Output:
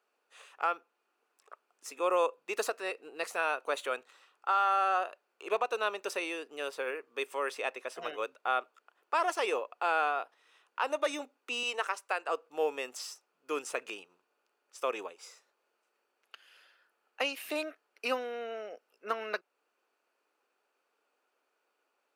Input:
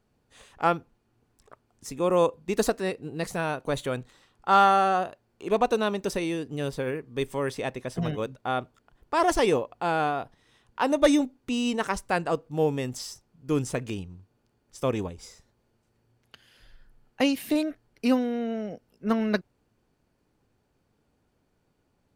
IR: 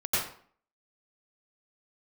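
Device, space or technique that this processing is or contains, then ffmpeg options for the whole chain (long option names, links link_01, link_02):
laptop speaker: -filter_complex "[0:a]highpass=frequency=420:width=0.5412,highpass=frequency=420:width=1.3066,equalizer=frequency=1300:width_type=o:width=0.57:gain=8,equalizer=frequency=2600:width_type=o:width=0.31:gain=8,alimiter=limit=-14dB:level=0:latency=1:release=325,asettb=1/sr,asplit=3[link_01][link_02][link_03];[link_01]atrim=end=11.634[link_04];[link_02]atrim=start=11.63:end=12.29,asetpts=PTS-STARTPTS,afade=type=in:duration=0.004:curve=qsin,afade=type=out:start_time=0.656:duration=0.004:curve=qsin,highpass=350[link_05];[link_03]atrim=start=12.286[link_06];[link_04][link_05]acrossfade=duration=0.004:curve1=hsin:curve2=qsin[link_07];[link_07][link_06]acrossfade=duration=0.004:curve1=qsin:curve2=hsin,volume=-4.5dB"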